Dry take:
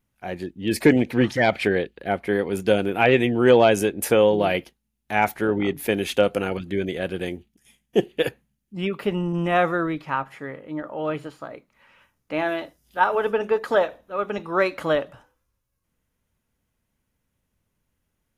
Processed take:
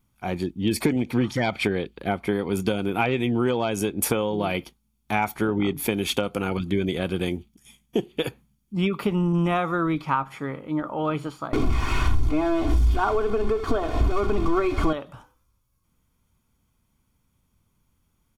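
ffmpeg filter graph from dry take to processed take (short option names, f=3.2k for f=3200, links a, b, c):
-filter_complex "[0:a]asettb=1/sr,asplit=3[a][b][c];[a]atrim=end=11.534[d];[b]atrim=start=11.53:end=14.93,asetpts=PTS-STARTPTS,afade=t=in:d=0.004:c=qsin,afade=t=out:st=3.396:d=0.004:c=qsin,aeval=exprs='val(0)+0.5*0.0631*sgn(val(0))':c=same,aemphasis=mode=reproduction:type=riaa,aecho=1:1:2.8:0.92,atrim=end_sample=149940[e];[c]atrim=start=14.926[f];[d][e]acrossfade=d=0.004:c1=hsin:c2=qsin[g];[g][f]acrossfade=d=0.004:c1=qsin:c2=hsin,equalizer=f=2k:t=o:w=0.41:g=-6,acompressor=threshold=-24dB:ratio=6,aecho=1:1:0.9:0.43,volume=4.5dB"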